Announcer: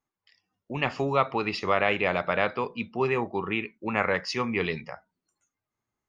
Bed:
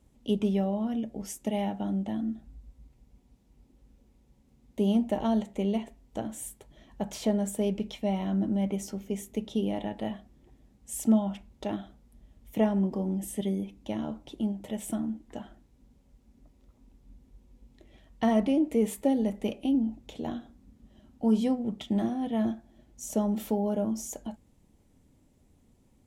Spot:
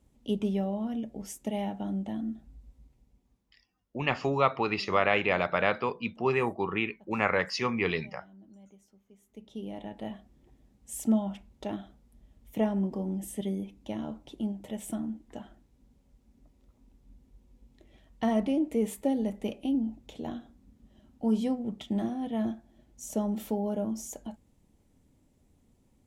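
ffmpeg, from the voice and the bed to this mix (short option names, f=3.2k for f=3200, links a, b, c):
-filter_complex "[0:a]adelay=3250,volume=-1dB[a];[1:a]volume=21dB,afade=t=out:st=2.74:d=0.97:silence=0.0668344,afade=t=in:st=9.2:d=1.13:silence=0.0668344[b];[a][b]amix=inputs=2:normalize=0"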